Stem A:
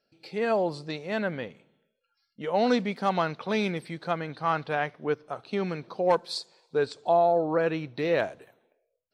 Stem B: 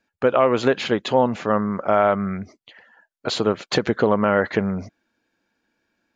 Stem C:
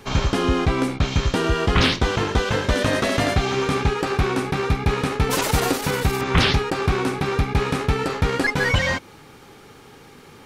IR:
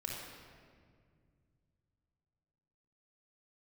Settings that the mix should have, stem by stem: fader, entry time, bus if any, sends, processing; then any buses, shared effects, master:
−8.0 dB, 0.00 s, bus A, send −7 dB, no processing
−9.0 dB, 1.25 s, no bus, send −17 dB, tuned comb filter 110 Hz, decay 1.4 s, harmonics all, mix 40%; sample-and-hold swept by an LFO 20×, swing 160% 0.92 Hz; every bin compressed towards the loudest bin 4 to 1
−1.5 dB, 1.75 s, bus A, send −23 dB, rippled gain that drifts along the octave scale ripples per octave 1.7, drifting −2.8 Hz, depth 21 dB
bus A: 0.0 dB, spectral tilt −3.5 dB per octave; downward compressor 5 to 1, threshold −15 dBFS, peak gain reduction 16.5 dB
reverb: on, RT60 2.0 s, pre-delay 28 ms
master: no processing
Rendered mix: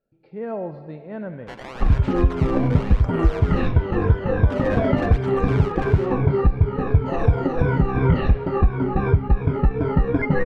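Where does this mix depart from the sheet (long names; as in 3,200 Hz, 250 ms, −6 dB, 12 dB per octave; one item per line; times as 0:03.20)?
stem B −9.0 dB → 0.0 dB
master: extra low-pass filter 1,800 Hz 12 dB per octave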